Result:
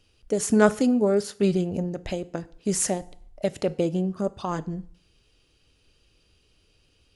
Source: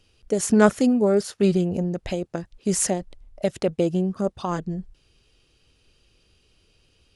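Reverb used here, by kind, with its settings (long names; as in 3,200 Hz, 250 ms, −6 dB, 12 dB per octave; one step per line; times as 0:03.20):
feedback delay network reverb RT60 0.57 s, low-frequency decay 0.95×, high-frequency decay 0.85×, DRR 14.5 dB
level −2 dB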